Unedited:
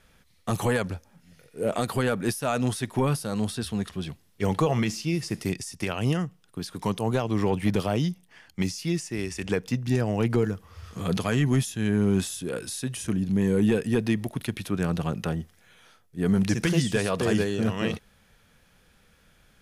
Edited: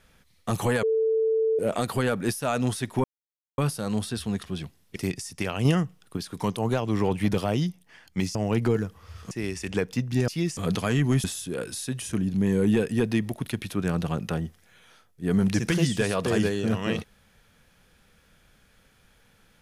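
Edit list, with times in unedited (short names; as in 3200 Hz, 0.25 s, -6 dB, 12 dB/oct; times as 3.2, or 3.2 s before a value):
0.83–1.59 bleep 444 Hz -20 dBFS
3.04 insert silence 0.54 s
4.42–5.38 cut
6.07–6.59 gain +4 dB
8.77–9.06 swap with 10.03–10.99
11.66–12.19 cut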